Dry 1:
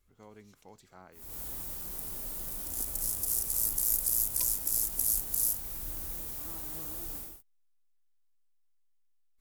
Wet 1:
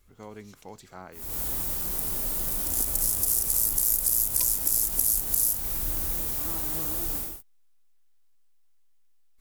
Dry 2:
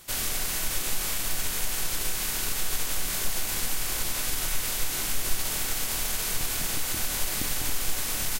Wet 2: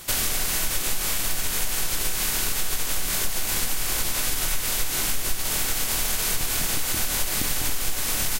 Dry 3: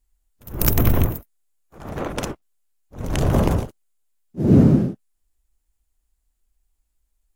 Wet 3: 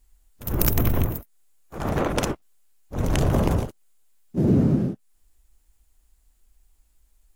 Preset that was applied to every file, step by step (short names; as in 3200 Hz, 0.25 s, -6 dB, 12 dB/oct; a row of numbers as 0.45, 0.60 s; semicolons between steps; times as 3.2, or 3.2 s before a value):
compressor 3:1, threshold -31 dBFS; match loudness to -24 LUFS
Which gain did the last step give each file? +9.5, +9.5, +9.5 dB